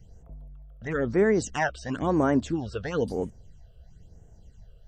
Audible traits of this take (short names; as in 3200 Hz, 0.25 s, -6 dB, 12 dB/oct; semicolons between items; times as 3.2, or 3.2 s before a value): phasing stages 8, 1 Hz, lowest notch 250–4300 Hz